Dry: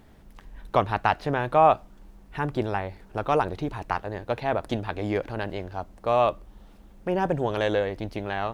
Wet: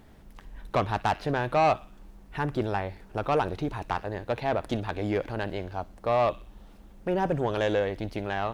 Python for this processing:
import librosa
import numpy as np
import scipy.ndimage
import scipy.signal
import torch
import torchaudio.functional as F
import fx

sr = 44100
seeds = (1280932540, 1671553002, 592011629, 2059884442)

y = fx.echo_wet_highpass(x, sr, ms=60, feedback_pct=48, hz=2300.0, wet_db=-16.0)
y = 10.0 ** (-16.5 / 20.0) * np.tanh(y / 10.0 ** (-16.5 / 20.0))